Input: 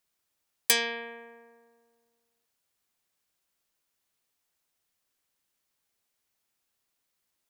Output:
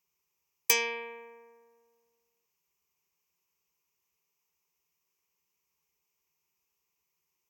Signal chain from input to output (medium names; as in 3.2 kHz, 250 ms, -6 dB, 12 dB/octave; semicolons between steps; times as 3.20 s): rippled EQ curve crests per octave 0.77, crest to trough 13 dB; trim -3.5 dB; Vorbis 96 kbps 44.1 kHz